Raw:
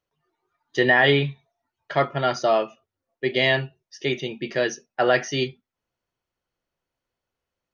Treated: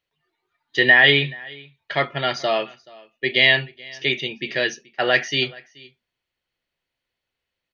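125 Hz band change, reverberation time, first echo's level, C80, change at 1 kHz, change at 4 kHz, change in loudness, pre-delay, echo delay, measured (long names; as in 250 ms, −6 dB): −2.0 dB, no reverb audible, −23.5 dB, no reverb audible, −2.0 dB, +7.5 dB, +3.5 dB, no reverb audible, 429 ms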